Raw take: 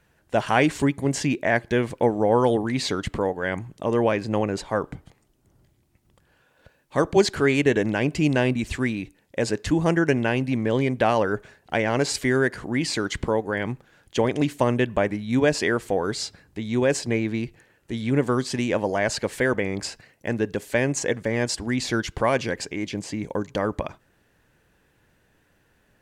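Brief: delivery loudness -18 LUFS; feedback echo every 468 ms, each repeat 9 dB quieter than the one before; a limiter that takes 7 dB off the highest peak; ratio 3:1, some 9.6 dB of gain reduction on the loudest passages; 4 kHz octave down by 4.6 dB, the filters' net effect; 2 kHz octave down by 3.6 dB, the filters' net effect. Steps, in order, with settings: peaking EQ 2 kHz -3.5 dB; peaking EQ 4 kHz -5 dB; compression 3:1, threshold -27 dBFS; peak limiter -21 dBFS; feedback delay 468 ms, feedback 35%, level -9 dB; trim +14 dB

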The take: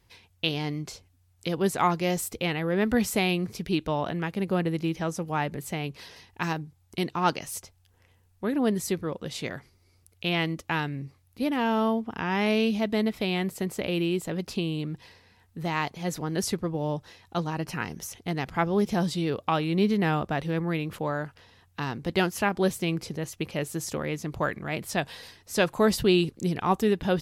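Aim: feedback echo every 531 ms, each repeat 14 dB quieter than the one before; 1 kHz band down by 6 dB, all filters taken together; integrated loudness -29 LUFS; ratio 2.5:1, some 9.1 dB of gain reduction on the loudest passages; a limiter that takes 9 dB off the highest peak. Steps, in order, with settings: peaking EQ 1 kHz -8 dB; compression 2.5:1, threshold -33 dBFS; peak limiter -24.5 dBFS; feedback delay 531 ms, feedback 20%, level -14 dB; trim +7.5 dB

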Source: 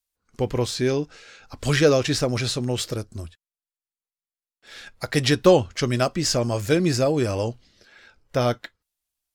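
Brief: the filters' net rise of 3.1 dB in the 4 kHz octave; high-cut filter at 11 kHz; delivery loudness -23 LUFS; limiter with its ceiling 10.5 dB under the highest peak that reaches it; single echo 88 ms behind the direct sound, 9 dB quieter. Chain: low-pass 11 kHz; peaking EQ 4 kHz +4 dB; peak limiter -13.5 dBFS; delay 88 ms -9 dB; trim +1 dB

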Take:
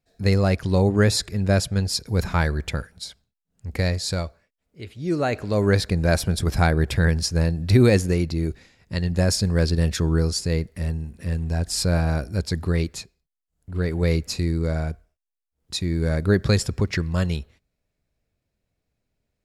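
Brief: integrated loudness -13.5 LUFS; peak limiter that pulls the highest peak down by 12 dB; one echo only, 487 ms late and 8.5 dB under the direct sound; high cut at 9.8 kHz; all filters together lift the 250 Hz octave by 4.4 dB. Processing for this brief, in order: low-pass 9.8 kHz; peaking EQ 250 Hz +6.5 dB; peak limiter -14.5 dBFS; delay 487 ms -8.5 dB; trim +11 dB

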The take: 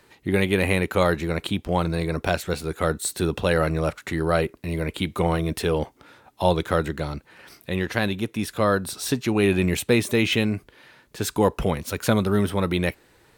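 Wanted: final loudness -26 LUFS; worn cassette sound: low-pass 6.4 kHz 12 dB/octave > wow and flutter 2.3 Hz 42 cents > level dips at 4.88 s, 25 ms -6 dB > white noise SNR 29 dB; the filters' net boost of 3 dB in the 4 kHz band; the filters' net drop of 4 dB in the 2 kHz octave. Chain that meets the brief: low-pass 6.4 kHz 12 dB/octave; peaking EQ 2 kHz -7 dB; peaking EQ 4 kHz +6.5 dB; wow and flutter 2.3 Hz 42 cents; level dips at 4.88 s, 25 ms -6 dB; white noise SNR 29 dB; trim -1.5 dB

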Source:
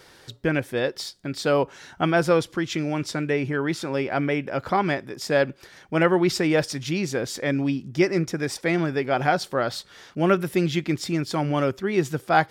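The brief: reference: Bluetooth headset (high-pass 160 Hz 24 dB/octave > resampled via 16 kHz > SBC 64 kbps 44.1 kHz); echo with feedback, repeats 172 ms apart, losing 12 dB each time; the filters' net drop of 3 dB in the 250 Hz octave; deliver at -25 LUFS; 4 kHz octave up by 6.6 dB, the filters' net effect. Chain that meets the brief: high-pass 160 Hz 24 dB/octave; peaking EQ 250 Hz -4 dB; peaking EQ 4 kHz +8.5 dB; feedback delay 172 ms, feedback 25%, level -12 dB; resampled via 16 kHz; trim -0.5 dB; SBC 64 kbps 44.1 kHz

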